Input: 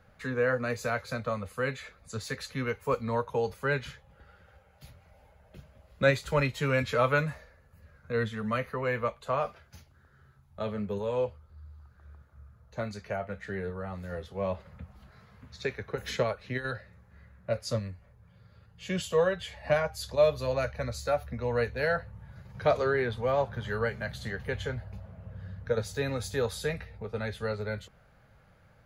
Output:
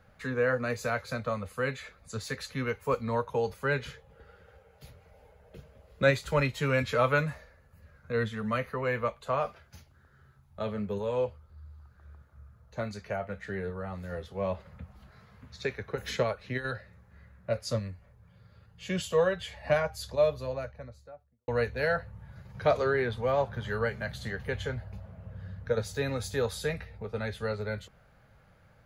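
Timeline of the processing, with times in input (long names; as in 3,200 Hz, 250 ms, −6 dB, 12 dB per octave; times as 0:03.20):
0:03.78–0:06.02: parametric band 450 Hz +12 dB 0.32 octaves
0:19.75–0:21.48: fade out and dull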